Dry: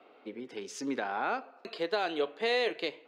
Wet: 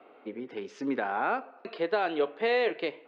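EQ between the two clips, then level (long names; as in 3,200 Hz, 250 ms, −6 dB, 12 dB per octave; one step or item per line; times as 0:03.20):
low-pass filter 2,500 Hz 12 dB per octave
+3.5 dB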